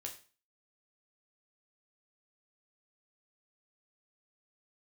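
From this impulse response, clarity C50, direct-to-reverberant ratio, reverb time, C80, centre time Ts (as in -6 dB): 11.0 dB, 1.0 dB, 0.35 s, 15.0 dB, 15 ms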